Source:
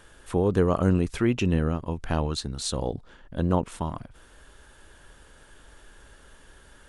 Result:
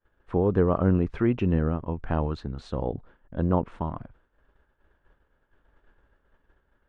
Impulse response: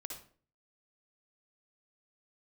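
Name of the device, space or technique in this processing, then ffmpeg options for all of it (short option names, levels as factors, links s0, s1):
hearing-loss simulation: -af "lowpass=1700,agate=range=0.0224:threshold=0.00891:ratio=3:detection=peak"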